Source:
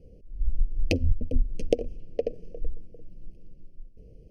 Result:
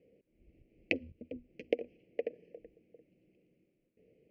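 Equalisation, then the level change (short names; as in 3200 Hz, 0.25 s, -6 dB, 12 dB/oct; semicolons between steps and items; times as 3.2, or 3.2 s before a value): HPF 310 Hz 12 dB/oct; synth low-pass 2100 Hz, resonance Q 3.7; bell 650 Hz -4 dB 1.4 oct; -4.5 dB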